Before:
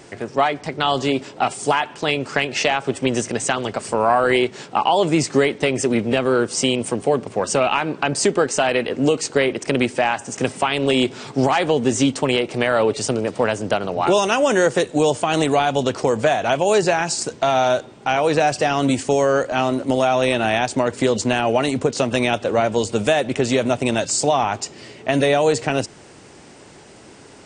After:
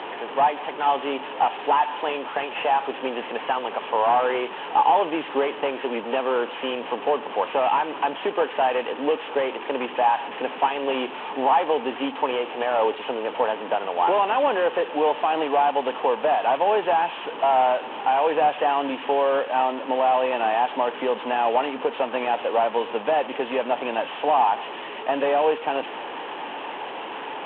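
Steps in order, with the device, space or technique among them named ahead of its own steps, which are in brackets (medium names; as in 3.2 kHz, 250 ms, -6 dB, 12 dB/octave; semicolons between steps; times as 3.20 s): digital answering machine (band-pass 300–3300 Hz; one-bit delta coder 16 kbps, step -25 dBFS; cabinet simulation 350–3500 Hz, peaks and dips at 370 Hz -6 dB, 620 Hz -4 dB, 890 Hz +7 dB, 1.4 kHz -6 dB, 2.1 kHz -8 dB, 3.1 kHz +4 dB)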